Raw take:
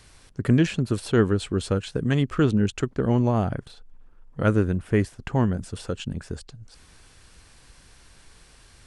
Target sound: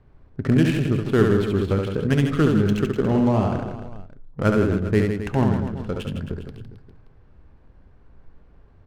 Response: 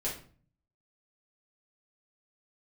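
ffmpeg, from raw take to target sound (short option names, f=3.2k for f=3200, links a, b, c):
-filter_complex "[0:a]adynamicsmooth=sensitivity=6.5:basefreq=690,aecho=1:1:70|157.5|266.9|403.6|574.5:0.631|0.398|0.251|0.158|0.1,asplit=2[a][b];[1:a]atrim=start_sample=2205[c];[b][c]afir=irnorm=-1:irlink=0,volume=-17dB[d];[a][d]amix=inputs=2:normalize=0"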